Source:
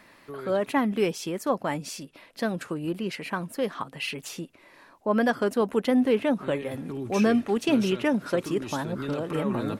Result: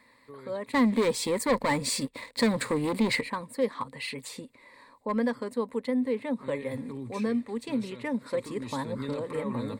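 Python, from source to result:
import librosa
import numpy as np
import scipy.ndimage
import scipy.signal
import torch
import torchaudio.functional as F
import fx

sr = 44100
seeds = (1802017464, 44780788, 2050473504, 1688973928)

y = fx.rider(x, sr, range_db=4, speed_s=0.5)
y = fx.leveller(y, sr, passes=3, at=(0.73, 3.21))
y = np.clip(y, -10.0 ** (-15.5 / 20.0), 10.0 ** (-15.5 / 20.0))
y = fx.ripple_eq(y, sr, per_octave=0.98, db=12)
y = y * 10.0 ** (-7.5 / 20.0)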